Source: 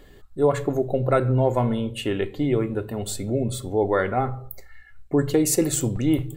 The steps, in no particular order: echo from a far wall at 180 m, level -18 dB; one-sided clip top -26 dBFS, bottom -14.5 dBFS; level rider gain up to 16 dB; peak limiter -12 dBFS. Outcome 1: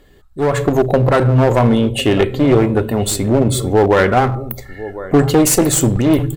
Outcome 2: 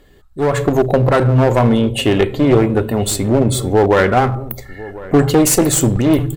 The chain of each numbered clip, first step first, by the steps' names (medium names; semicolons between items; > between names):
echo from a far wall > peak limiter > one-sided clip > level rider; peak limiter > one-sided clip > echo from a far wall > level rider